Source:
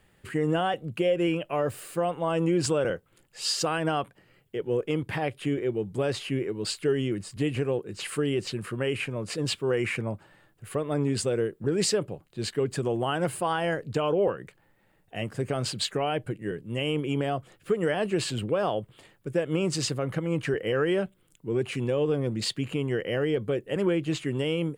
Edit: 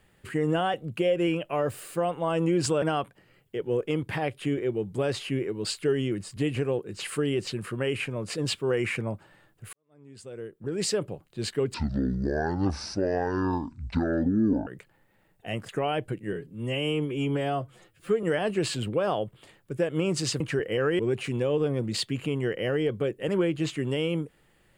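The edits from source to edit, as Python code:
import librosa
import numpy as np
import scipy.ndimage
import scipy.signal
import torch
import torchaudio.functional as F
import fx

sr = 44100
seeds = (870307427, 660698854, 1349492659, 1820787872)

y = fx.edit(x, sr, fx.cut(start_s=2.82, length_s=1.0),
    fx.fade_in_span(start_s=10.73, length_s=1.33, curve='qua'),
    fx.speed_span(start_s=12.74, length_s=1.61, speed=0.55),
    fx.cut(start_s=15.37, length_s=0.5),
    fx.stretch_span(start_s=16.54, length_s=1.25, factor=1.5),
    fx.cut(start_s=19.96, length_s=0.39),
    fx.cut(start_s=20.94, length_s=0.53), tone=tone)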